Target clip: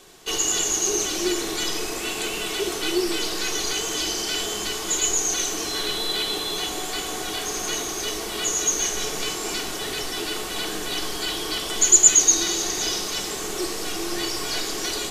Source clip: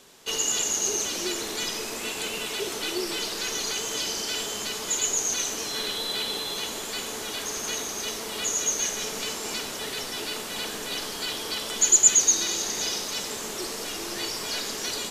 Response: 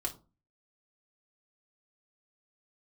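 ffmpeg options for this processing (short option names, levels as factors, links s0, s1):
-filter_complex "[0:a]asettb=1/sr,asplit=3[s0][s1][s2];[s0]atrim=end=6.564[s3];[s1]atrim=start=6.56:end=7.65,asetpts=PTS-STARTPTS,afade=t=in:d=0.004:c=qsin,afade=t=out:st=1.086:d=0.004:c=qsin,aeval=exprs='val(0)+0.00355*sin(2*PI*740*n/s)':c=same[s4];[s2]atrim=start=7.646[s5];[s3][s4]acrossfade=d=0.004:c1=hsin:c2=qsin[s6];[s6][s5]acrossfade=d=0.004:c1=qsin:c2=hsin,asplit=2[s7][s8];[s8]lowshelf=f=220:g=6.5[s9];[1:a]atrim=start_sample=2205[s10];[s9][s10]afir=irnorm=-1:irlink=0,volume=0.841[s11];[s7][s11]amix=inputs=2:normalize=0,volume=0.794"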